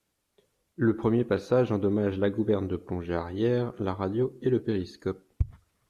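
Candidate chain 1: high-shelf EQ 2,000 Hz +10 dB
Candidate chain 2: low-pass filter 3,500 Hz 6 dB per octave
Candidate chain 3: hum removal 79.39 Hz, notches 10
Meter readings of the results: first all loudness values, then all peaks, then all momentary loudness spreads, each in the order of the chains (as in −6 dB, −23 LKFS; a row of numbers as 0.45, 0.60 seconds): −28.0, −28.5, −28.5 LKFS; −11.0, −13.0, −13.0 dBFS; 9, 9, 9 LU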